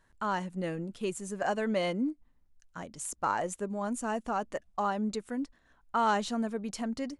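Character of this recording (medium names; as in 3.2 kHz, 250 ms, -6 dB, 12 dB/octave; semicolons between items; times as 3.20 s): noise floor -68 dBFS; spectral tilt -4.5 dB/octave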